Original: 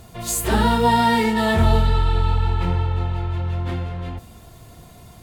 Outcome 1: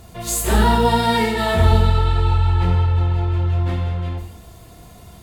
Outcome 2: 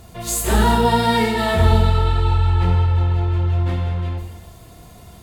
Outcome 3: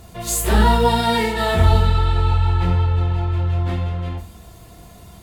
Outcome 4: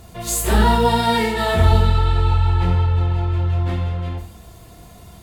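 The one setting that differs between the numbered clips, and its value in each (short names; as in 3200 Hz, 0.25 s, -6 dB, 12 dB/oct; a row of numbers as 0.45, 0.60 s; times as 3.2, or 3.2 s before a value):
non-linear reverb, gate: 0.29, 0.44, 0.12, 0.19 s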